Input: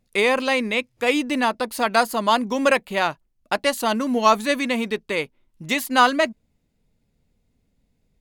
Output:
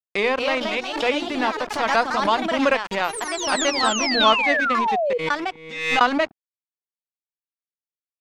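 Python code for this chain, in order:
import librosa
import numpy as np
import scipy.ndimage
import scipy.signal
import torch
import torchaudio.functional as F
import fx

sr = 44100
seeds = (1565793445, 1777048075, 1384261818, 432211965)

y = scipy.signal.sosfilt(scipy.signal.butter(4, 63.0, 'highpass', fs=sr, output='sos'), x)
y = fx.hum_notches(y, sr, base_hz=60, count=7)
y = np.sign(y) * np.maximum(np.abs(y) - 10.0 ** (-30.5 / 20.0), 0.0)
y = fx.comb_fb(y, sr, f0_hz=160.0, decay_s=1.7, harmonics='all', damping=0.0, mix_pct=100, at=(5.13, 6.01))
y = fx.spec_paint(y, sr, seeds[0], shape='fall', start_s=3.84, length_s=1.34, low_hz=460.0, high_hz=8500.0, level_db=-21.0)
y = fx.air_absorb(y, sr, metres=120.0)
y = fx.echo_pitch(y, sr, ms=250, semitones=3, count=3, db_per_echo=-6.0)
y = fx.pre_swell(y, sr, db_per_s=68.0)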